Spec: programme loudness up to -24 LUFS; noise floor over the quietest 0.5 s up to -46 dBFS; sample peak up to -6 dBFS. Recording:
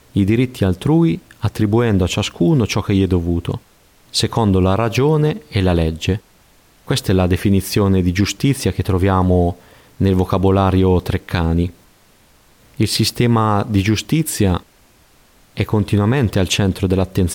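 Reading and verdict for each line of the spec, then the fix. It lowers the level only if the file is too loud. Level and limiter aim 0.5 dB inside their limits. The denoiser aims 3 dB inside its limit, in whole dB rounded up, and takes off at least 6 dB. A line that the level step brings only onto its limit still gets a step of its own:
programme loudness -17.0 LUFS: fail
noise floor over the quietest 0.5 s -51 dBFS: OK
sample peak -4.5 dBFS: fail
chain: gain -7.5 dB

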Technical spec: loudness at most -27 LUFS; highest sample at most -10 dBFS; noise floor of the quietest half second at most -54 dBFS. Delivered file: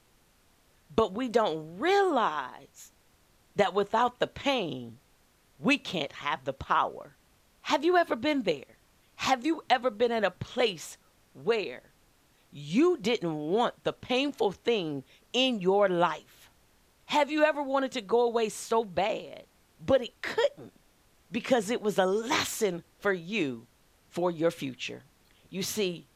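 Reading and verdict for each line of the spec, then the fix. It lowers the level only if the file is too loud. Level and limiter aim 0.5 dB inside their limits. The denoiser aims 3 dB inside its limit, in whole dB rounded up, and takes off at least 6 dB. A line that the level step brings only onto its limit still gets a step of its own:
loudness -29.0 LUFS: OK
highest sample -11.0 dBFS: OK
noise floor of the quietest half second -64 dBFS: OK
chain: none

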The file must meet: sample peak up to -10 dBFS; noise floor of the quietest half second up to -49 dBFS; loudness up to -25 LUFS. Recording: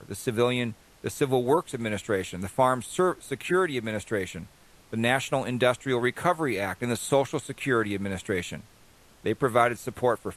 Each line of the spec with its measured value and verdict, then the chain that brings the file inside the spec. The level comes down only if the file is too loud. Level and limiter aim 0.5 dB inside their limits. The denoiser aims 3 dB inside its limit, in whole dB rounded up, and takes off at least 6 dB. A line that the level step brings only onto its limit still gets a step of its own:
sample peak -6.5 dBFS: fail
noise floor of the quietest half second -56 dBFS: OK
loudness -27.0 LUFS: OK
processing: limiter -10.5 dBFS

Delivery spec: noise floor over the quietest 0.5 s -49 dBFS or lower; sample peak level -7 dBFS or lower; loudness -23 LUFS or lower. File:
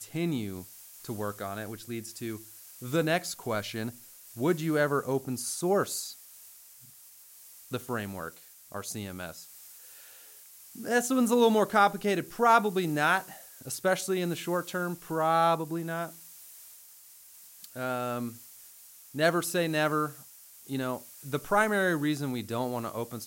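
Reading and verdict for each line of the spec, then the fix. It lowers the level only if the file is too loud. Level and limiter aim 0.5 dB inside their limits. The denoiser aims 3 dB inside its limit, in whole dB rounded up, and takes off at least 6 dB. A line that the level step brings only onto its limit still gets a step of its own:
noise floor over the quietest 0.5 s -53 dBFS: OK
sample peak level -10.0 dBFS: OK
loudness -29.5 LUFS: OK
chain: none

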